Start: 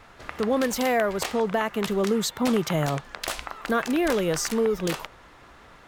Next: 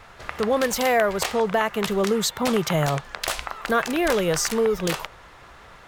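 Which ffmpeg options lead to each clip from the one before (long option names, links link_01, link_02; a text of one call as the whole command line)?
ffmpeg -i in.wav -af "equalizer=frequency=270:width_type=o:width=0.77:gain=-7,volume=4dB" out.wav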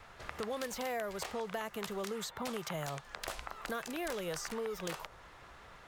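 ffmpeg -i in.wav -filter_complex "[0:a]acrossover=split=550|1800|4300[link_01][link_02][link_03][link_04];[link_01]acompressor=threshold=-35dB:ratio=4[link_05];[link_02]acompressor=threshold=-34dB:ratio=4[link_06];[link_03]acompressor=threshold=-42dB:ratio=4[link_07];[link_04]acompressor=threshold=-38dB:ratio=4[link_08];[link_05][link_06][link_07][link_08]amix=inputs=4:normalize=0,volume=-8dB" out.wav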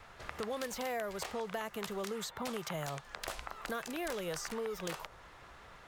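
ffmpeg -i in.wav -af anull out.wav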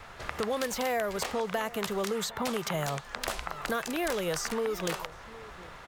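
ffmpeg -i in.wav -filter_complex "[0:a]asplit=2[link_01][link_02];[link_02]adelay=758,volume=-18dB,highshelf=frequency=4000:gain=-17.1[link_03];[link_01][link_03]amix=inputs=2:normalize=0,volume=7.5dB" out.wav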